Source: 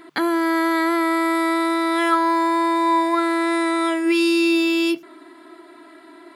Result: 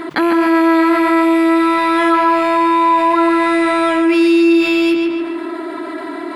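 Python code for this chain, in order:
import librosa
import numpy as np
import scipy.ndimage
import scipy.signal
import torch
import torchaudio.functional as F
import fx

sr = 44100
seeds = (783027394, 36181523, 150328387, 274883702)

p1 = fx.rattle_buzz(x, sr, strikes_db=-38.0, level_db=-23.0)
p2 = fx.high_shelf(p1, sr, hz=3200.0, db=-9.0)
p3 = p2 + fx.echo_filtered(p2, sr, ms=143, feedback_pct=44, hz=3900.0, wet_db=-5, dry=0)
p4 = fx.env_flatten(p3, sr, amount_pct=50)
y = p4 * librosa.db_to_amplitude(3.0)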